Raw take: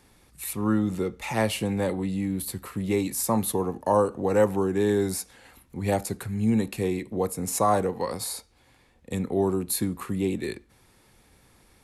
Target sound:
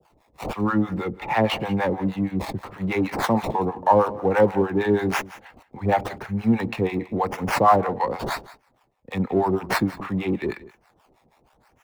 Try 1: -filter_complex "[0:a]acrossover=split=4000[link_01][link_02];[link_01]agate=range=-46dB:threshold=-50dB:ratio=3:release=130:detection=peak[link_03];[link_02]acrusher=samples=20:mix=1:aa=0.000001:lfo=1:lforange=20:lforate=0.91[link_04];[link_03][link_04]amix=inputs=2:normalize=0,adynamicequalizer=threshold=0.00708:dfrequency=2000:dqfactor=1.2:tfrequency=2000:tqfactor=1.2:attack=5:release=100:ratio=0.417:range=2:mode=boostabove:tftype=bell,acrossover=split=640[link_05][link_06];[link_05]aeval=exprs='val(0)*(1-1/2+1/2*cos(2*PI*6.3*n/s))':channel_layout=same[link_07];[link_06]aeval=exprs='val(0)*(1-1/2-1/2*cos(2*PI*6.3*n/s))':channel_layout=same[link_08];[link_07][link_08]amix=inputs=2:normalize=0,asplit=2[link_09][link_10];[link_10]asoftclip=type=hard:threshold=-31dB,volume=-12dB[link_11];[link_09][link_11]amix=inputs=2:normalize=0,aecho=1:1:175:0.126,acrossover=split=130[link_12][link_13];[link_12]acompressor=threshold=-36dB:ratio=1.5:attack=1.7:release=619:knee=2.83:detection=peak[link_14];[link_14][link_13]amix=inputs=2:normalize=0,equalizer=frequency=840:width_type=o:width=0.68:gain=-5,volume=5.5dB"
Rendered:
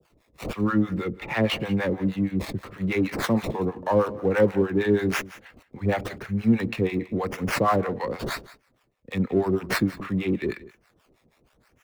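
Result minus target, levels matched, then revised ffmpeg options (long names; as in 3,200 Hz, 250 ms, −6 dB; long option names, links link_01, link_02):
1,000 Hz band −6.0 dB
-filter_complex "[0:a]acrossover=split=4000[link_01][link_02];[link_01]agate=range=-46dB:threshold=-50dB:ratio=3:release=130:detection=peak[link_03];[link_02]acrusher=samples=20:mix=1:aa=0.000001:lfo=1:lforange=20:lforate=0.91[link_04];[link_03][link_04]amix=inputs=2:normalize=0,adynamicequalizer=threshold=0.00708:dfrequency=2000:dqfactor=1.2:tfrequency=2000:tqfactor=1.2:attack=5:release=100:ratio=0.417:range=2:mode=boostabove:tftype=bell,acrossover=split=640[link_05][link_06];[link_05]aeval=exprs='val(0)*(1-1/2+1/2*cos(2*PI*6.3*n/s))':channel_layout=same[link_07];[link_06]aeval=exprs='val(0)*(1-1/2-1/2*cos(2*PI*6.3*n/s))':channel_layout=same[link_08];[link_07][link_08]amix=inputs=2:normalize=0,asplit=2[link_09][link_10];[link_10]asoftclip=type=hard:threshold=-31dB,volume=-12dB[link_11];[link_09][link_11]amix=inputs=2:normalize=0,aecho=1:1:175:0.126,acrossover=split=130[link_12][link_13];[link_12]acompressor=threshold=-36dB:ratio=1.5:attack=1.7:release=619:knee=2.83:detection=peak[link_14];[link_14][link_13]amix=inputs=2:normalize=0,equalizer=frequency=840:width_type=o:width=0.68:gain=7,volume=5.5dB"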